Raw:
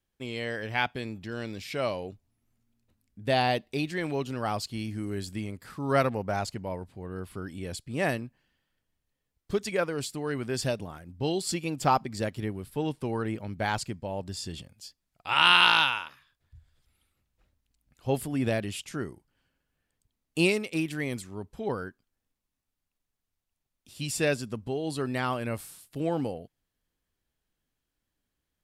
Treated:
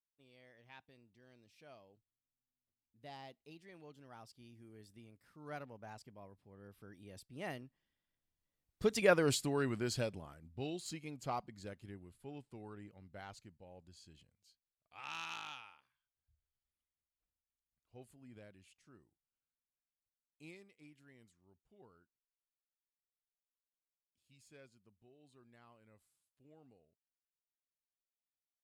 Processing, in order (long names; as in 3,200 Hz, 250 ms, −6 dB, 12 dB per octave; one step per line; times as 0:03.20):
phase distortion by the signal itself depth 0.052 ms
source passing by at 0:09.24, 25 m/s, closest 6.9 metres
level +1 dB